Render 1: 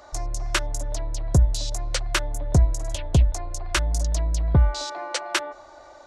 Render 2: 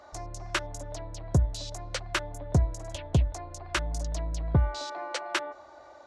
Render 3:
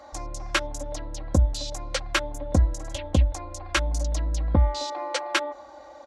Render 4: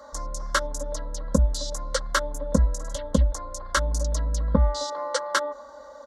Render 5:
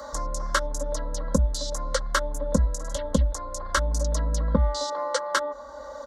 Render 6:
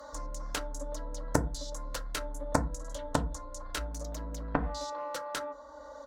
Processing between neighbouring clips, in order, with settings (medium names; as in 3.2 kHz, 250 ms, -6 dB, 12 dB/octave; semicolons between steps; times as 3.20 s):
high-pass 69 Hz 12 dB/octave; treble shelf 5.4 kHz -9.5 dB; trim -3.5 dB
comb 3.7 ms, depth 79%; trim +3 dB
static phaser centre 500 Hz, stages 8; trim +4.5 dB
three bands compressed up and down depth 40%
Chebyshev shaper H 3 -7 dB, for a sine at -6.5 dBFS; FDN reverb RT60 0.31 s, low-frequency decay 1.3×, high-frequency decay 0.45×, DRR 6.5 dB